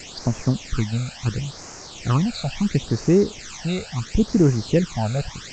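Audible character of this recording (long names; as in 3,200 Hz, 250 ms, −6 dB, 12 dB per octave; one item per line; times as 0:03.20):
a quantiser's noise floor 6 bits, dither triangular
phaser sweep stages 12, 0.73 Hz, lowest notch 310–3,500 Hz
G.722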